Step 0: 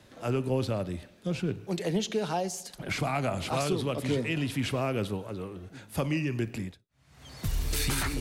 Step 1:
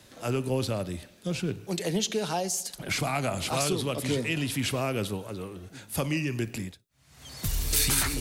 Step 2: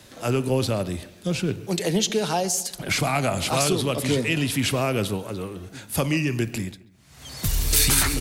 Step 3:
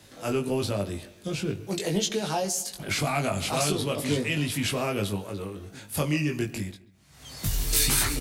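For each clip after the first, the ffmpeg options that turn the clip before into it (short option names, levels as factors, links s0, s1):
-af "highshelf=f=4000:g=10.5"
-filter_complex "[0:a]asplit=2[s0][s1];[s1]adelay=136,lowpass=f=2400:p=1,volume=0.112,asplit=2[s2][s3];[s3]adelay=136,lowpass=f=2400:p=1,volume=0.44,asplit=2[s4][s5];[s5]adelay=136,lowpass=f=2400:p=1,volume=0.44[s6];[s0][s2][s4][s6]amix=inputs=4:normalize=0,volume=1.88"
-filter_complex "[0:a]asplit=2[s0][s1];[s1]adelay=20,volume=0.668[s2];[s0][s2]amix=inputs=2:normalize=0,volume=0.531"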